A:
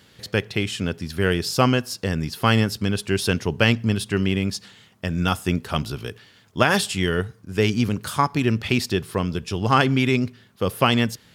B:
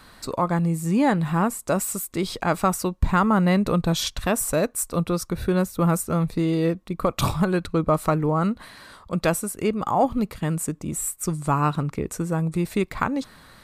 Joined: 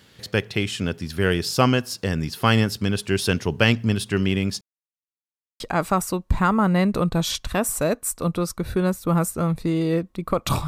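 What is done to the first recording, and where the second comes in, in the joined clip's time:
A
4.61–5.6 mute
5.6 switch to B from 2.32 s

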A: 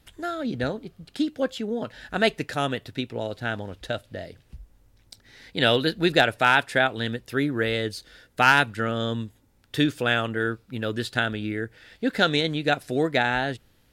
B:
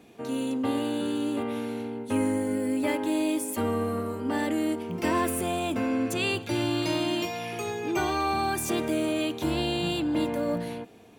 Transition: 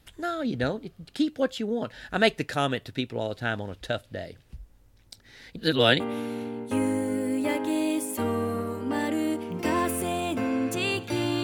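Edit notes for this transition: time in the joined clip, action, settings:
A
5.56–6 reverse
6 switch to B from 1.39 s

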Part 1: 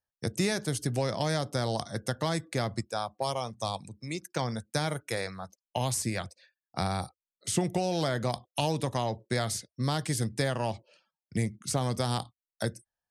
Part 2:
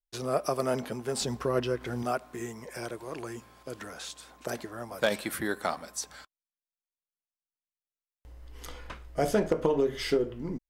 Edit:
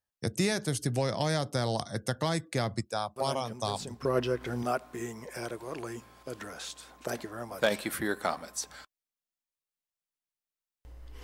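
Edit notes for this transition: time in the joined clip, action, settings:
part 1
3.16 add part 2 from 0.56 s 0.89 s -9.5 dB
4.05 switch to part 2 from 1.45 s

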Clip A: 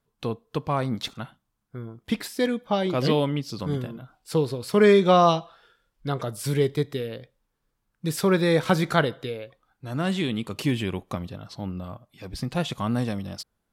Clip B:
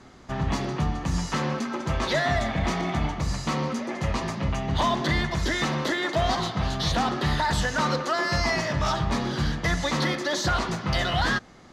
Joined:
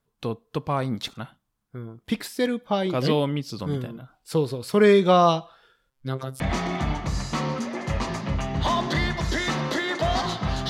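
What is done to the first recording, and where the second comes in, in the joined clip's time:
clip A
5.9–6.4 robotiser 132 Hz
6.4 switch to clip B from 2.54 s

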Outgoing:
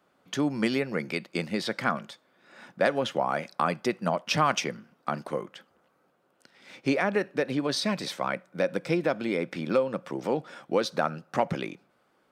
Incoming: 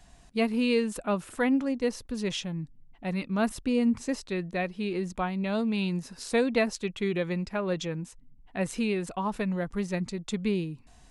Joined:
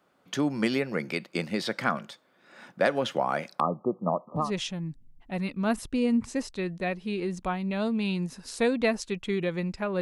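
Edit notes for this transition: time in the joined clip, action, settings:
outgoing
3.6–4.52 brick-wall FIR low-pass 1300 Hz
4.43 switch to incoming from 2.16 s, crossfade 0.18 s

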